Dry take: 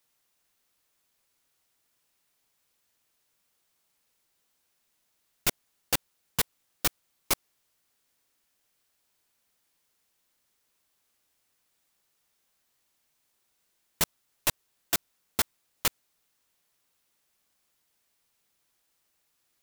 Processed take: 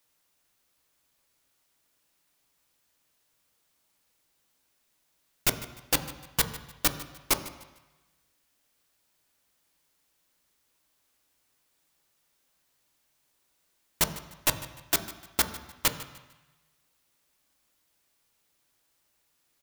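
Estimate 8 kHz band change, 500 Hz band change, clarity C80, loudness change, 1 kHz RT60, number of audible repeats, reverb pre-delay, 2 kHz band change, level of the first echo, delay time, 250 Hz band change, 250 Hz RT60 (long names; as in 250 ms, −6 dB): +1.5 dB, +2.5 dB, 12.5 dB, +1.0 dB, 1.1 s, 2, 3 ms, +2.0 dB, −18.0 dB, 150 ms, +3.5 dB, 0.95 s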